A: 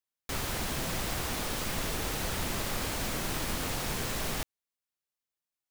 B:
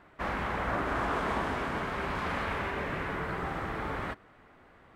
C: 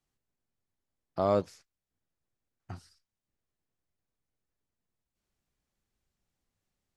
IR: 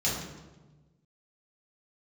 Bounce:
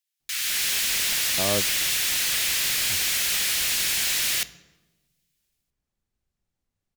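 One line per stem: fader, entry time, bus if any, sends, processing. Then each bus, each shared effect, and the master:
-6.0 dB, 0.00 s, send -22.5 dB, inverse Chebyshev high-pass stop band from 710 Hz, stop band 50 dB; level rider gain up to 9.5 dB; sine folder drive 9 dB, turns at -15 dBFS
mute
-2.0 dB, 0.20 s, no send, none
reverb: on, RT60 1.2 s, pre-delay 3 ms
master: bass shelf 200 Hz +5 dB

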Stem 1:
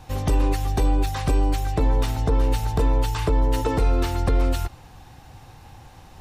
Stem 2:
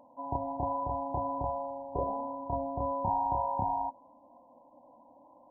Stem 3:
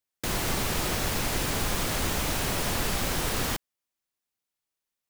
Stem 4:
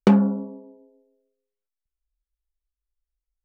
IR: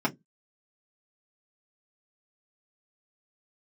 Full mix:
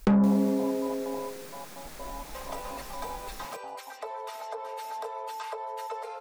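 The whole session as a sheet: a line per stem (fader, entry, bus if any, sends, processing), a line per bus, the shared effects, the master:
-5.0 dB, 2.25 s, send -9 dB, steep high-pass 450 Hz 96 dB/octave; compression 6:1, threshold -36 dBFS, peak gain reduction 13 dB
-18.0 dB, 0.00 s, send -8.5 dB, high-order bell 610 Hz +8.5 dB; compression, threshold -26 dBFS, peak gain reduction 8 dB; trance gate ".xx..x.x" 128 bpm
-17.0 dB, 0.00 s, no send, high-pass 150 Hz 24 dB/octave
-2.0 dB, 0.00 s, no send, saturation -15.5 dBFS, distortion -10 dB; level flattener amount 70%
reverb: on, RT60 0.15 s, pre-delay 3 ms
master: peaking EQ 3 kHz -4 dB 0.3 oct

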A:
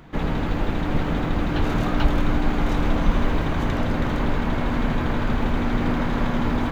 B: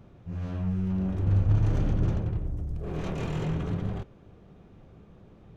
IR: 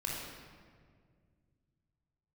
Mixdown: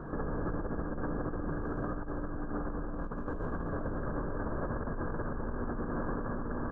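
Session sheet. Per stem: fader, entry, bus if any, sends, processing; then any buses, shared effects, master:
-1.0 dB, 0.00 s, send -13.5 dB, echo send -6 dB, rippled Chebyshev low-pass 1.7 kHz, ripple 6 dB
-6.0 dB, 0.00 s, no send, no echo send, peaking EQ 1.9 kHz -6 dB 1.3 oct; feedback comb 56 Hz, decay 1.8 s, harmonics all, mix 80%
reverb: on, RT60 2.0 s, pre-delay 22 ms
echo: delay 552 ms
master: compressor with a negative ratio -33 dBFS, ratio -1; peak limiter -25.5 dBFS, peak gain reduction 10 dB

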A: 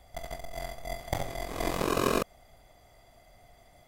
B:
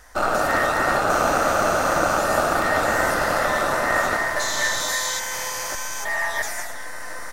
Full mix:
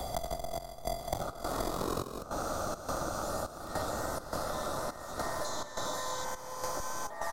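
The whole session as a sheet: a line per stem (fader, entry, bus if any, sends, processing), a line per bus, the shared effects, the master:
+1.0 dB, 0.00 s, no send, none
-12.0 dB, 1.05 s, no send, bass shelf 490 Hz +6 dB; compression 3:1, threshold -21 dBFS, peak gain reduction 6.5 dB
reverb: none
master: high-order bell 2.2 kHz -12 dB 1.1 oct; trance gate "xxxx..xxx." 104 bpm -12 dB; three bands compressed up and down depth 100%

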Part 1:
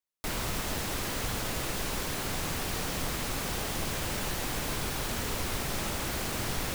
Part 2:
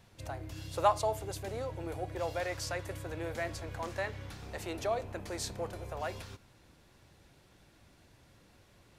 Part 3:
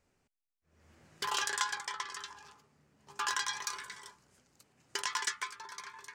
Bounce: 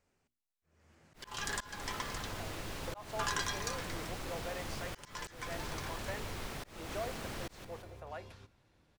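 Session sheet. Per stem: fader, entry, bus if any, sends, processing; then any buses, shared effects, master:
-8.5 dB, 0.90 s, no send, echo send -11.5 dB, none
-7.5 dB, 2.10 s, no send, no echo send, none
-2.0 dB, 0.00 s, no send, no echo send, treble shelf 6.4 kHz +7 dB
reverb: none
echo: feedback delay 176 ms, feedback 38%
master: treble shelf 6.6 kHz -9 dB; hum notches 60/120/180/240/300/360 Hz; slow attack 281 ms

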